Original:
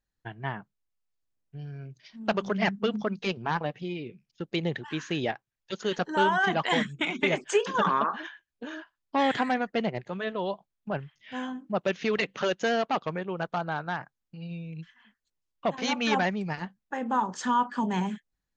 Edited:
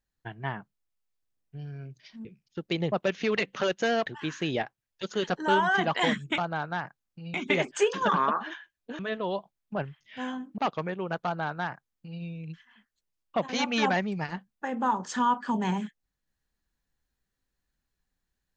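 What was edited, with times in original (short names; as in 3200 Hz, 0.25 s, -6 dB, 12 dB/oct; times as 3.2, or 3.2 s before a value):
2.25–4.08 cut
8.72–10.14 cut
11.73–12.87 move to 4.75
13.54–14.5 copy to 7.07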